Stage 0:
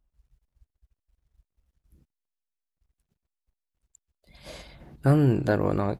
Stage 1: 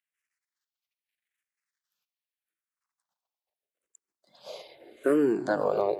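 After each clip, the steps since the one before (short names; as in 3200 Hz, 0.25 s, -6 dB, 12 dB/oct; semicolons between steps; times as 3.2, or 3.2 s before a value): regenerating reverse delay 0.282 s, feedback 47%, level -11.5 dB; high-pass sweep 1900 Hz -> 410 Hz, 2.16–4.13; endless phaser -0.81 Hz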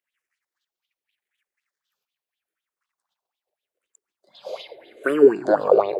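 LFO bell 4 Hz 380–3600 Hz +18 dB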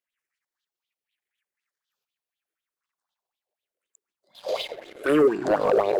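compressor 4:1, threshold -22 dBFS, peak gain reduction 12.5 dB; sample leveller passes 2; transient shaper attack -8 dB, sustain -1 dB; gain +1.5 dB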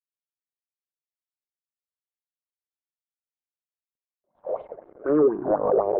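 G.711 law mismatch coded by A; LPF 1100 Hz 24 dB/oct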